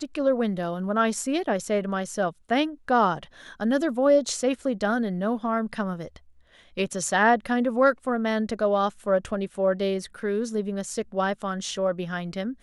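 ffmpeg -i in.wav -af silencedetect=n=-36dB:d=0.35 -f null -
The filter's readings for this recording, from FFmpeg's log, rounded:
silence_start: 6.16
silence_end: 6.77 | silence_duration: 0.61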